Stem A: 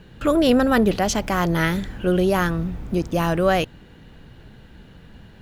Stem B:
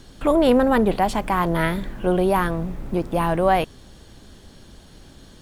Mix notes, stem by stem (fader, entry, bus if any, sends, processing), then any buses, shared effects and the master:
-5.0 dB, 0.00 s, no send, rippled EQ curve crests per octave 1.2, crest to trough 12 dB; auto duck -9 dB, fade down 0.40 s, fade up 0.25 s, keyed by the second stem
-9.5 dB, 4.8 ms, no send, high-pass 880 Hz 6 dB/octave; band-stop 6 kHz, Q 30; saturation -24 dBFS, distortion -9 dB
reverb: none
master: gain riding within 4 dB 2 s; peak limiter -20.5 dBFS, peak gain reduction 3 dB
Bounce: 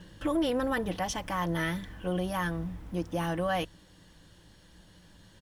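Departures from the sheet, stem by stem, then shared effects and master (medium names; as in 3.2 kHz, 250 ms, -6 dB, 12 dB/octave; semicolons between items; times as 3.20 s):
stem B: missing saturation -24 dBFS, distortion -9 dB; master: missing gain riding within 4 dB 2 s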